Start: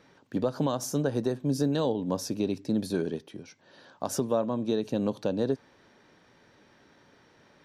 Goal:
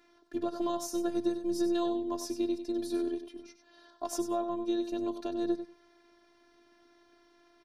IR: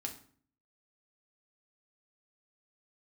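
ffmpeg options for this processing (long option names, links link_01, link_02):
-af "afftfilt=real='hypot(re,im)*cos(PI*b)':imag='0':win_size=512:overlap=0.75,aecho=1:1:96|192:0.316|0.0538,volume=-1dB"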